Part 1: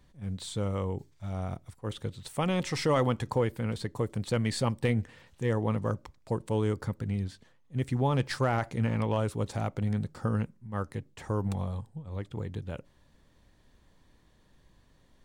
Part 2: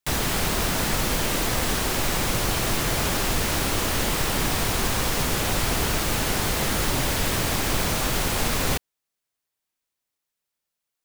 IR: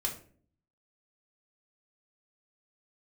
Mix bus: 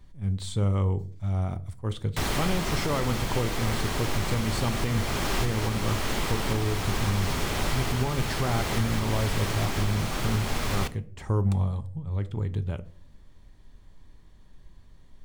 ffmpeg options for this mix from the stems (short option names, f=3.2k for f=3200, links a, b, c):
-filter_complex "[0:a]lowshelf=f=110:g=10.5,volume=-0.5dB,asplit=2[a][b];[b]volume=-10.5dB[c];[1:a]highshelf=f=7.7k:g=-10,adelay=2100,volume=-3.5dB,asplit=2[d][e];[e]volume=-12dB[f];[2:a]atrim=start_sample=2205[g];[c][f]amix=inputs=2:normalize=0[h];[h][g]afir=irnorm=-1:irlink=0[i];[a][d][i]amix=inputs=3:normalize=0,alimiter=limit=-15.5dB:level=0:latency=1:release=495"